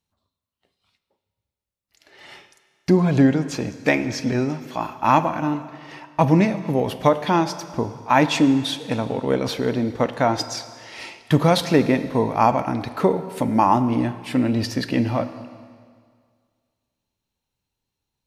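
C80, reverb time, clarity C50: 13.5 dB, 1.9 s, 12.5 dB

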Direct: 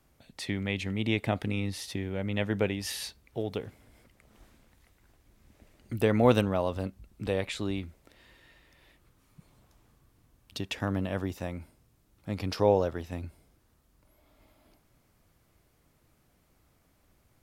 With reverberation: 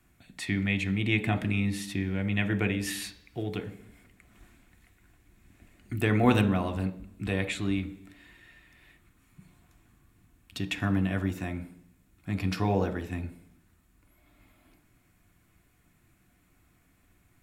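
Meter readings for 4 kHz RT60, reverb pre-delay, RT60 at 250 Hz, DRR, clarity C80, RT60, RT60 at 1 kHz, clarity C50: 0.95 s, 3 ms, 0.85 s, 6.5 dB, 18.0 dB, 0.70 s, 0.70 s, 15.0 dB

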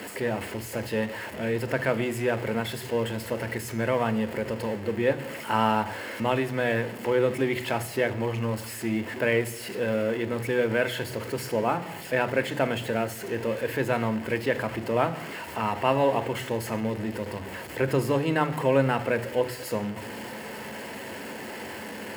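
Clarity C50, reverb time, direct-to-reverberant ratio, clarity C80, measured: 17.0 dB, 0.90 s, 11.5 dB, 19.0 dB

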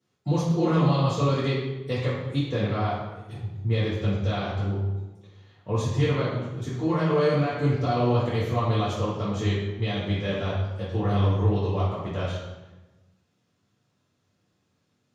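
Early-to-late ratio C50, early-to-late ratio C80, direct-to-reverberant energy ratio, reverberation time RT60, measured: 1.0 dB, 3.5 dB, -9.5 dB, 1.1 s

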